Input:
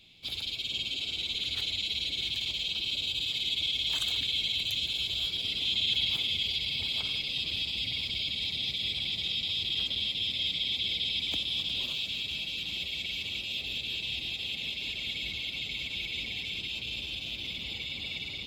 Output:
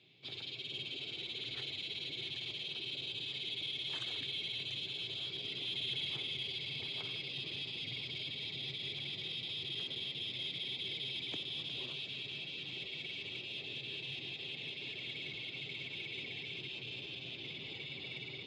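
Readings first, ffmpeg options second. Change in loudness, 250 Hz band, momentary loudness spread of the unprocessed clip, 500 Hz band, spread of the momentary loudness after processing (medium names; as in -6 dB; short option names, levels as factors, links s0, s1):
-9.5 dB, -4.0 dB, 6 LU, +0.5 dB, 5 LU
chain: -filter_complex "[0:a]aemphasis=mode=reproduction:type=75fm,asplit=2[s0][s1];[s1]volume=53.1,asoftclip=hard,volume=0.0188,volume=0.501[s2];[s0][s2]amix=inputs=2:normalize=0,highpass=f=120:w=0.5412,highpass=f=120:w=1.3066,equalizer=f=130:t=q:w=4:g=8,equalizer=f=210:t=q:w=4:g=-7,equalizer=f=390:t=q:w=4:g=9,equalizer=f=1800:t=q:w=4:g=5,equalizer=f=7900:t=q:w=4:g=-5,lowpass=f=9200:w=0.5412,lowpass=f=9200:w=1.3066,volume=0.398"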